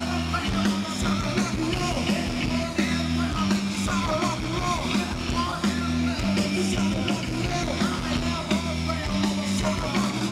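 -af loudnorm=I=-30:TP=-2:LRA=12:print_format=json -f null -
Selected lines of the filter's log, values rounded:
"input_i" : "-25.5",
"input_tp" : "-9.8",
"input_lra" : "0.6",
"input_thresh" : "-35.5",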